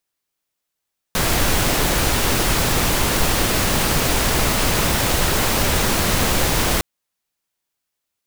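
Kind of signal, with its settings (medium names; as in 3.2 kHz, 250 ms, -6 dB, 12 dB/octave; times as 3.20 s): noise pink, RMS -18 dBFS 5.66 s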